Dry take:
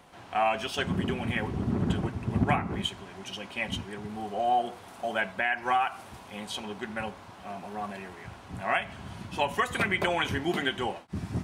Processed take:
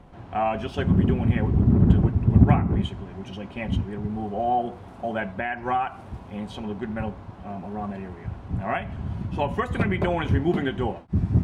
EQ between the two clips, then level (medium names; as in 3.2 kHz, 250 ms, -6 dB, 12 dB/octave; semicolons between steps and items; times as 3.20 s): tilt EQ -4 dB/octave; 0.0 dB